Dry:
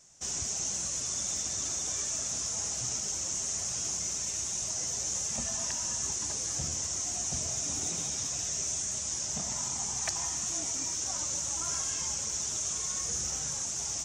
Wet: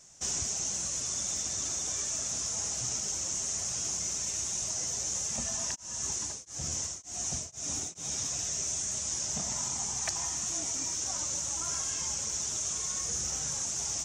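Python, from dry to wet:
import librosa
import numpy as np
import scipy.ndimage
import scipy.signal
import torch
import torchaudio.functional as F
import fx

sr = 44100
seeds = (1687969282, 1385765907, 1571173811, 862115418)

y = fx.rider(x, sr, range_db=10, speed_s=0.5)
y = fx.tremolo_abs(y, sr, hz=fx.line((5.74, 1.3), (8.1, 2.6)), at=(5.74, 8.1), fade=0.02)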